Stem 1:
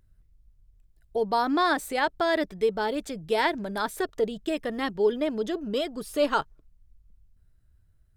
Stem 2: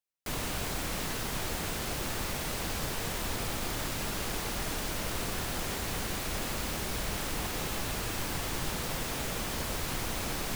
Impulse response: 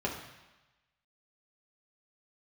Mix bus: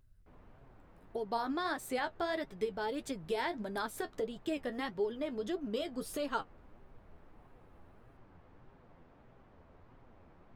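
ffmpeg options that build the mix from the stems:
-filter_complex "[0:a]acompressor=threshold=-33dB:ratio=2.5,volume=1dB[link_01];[1:a]lowpass=1200,volume=-19.5dB[link_02];[link_01][link_02]amix=inputs=2:normalize=0,flanger=delay=7.3:depth=4.8:regen=44:speed=1.6:shape=sinusoidal"

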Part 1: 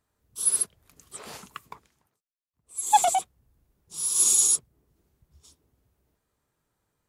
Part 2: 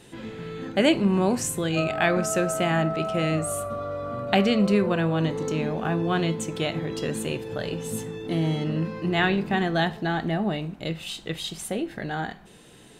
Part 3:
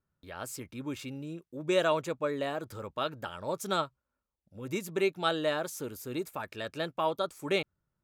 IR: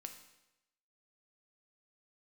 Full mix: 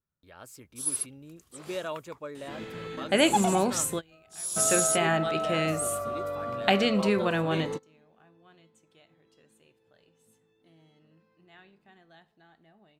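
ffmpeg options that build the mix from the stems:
-filter_complex "[0:a]adelay=400,volume=-6.5dB[link_01];[1:a]lowshelf=frequency=360:gain=-8,adelay=2350,volume=0.5dB[link_02];[2:a]volume=-8dB,asplit=2[link_03][link_04];[link_04]apad=whole_len=676879[link_05];[link_02][link_05]sidechaingate=range=-31dB:threshold=-57dB:ratio=16:detection=peak[link_06];[link_01][link_06][link_03]amix=inputs=3:normalize=0"

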